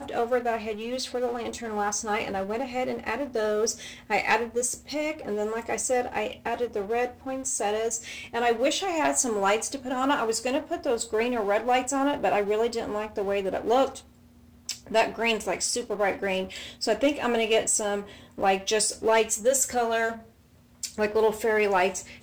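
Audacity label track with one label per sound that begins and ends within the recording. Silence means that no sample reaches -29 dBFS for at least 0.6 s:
14.690000	20.130000	sound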